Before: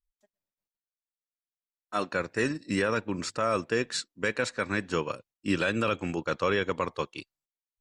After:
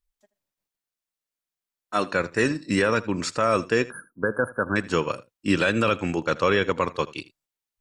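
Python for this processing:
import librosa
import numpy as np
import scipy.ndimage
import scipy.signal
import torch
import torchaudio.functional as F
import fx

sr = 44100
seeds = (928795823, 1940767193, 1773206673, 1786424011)

p1 = fx.brickwall_bandstop(x, sr, low_hz=1700.0, high_hz=9300.0, at=(3.84, 4.76))
p2 = p1 + fx.echo_single(p1, sr, ms=80, db=-19.5, dry=0)
y = F.gain(torch.from_numpy(p2), 5.5).numpy()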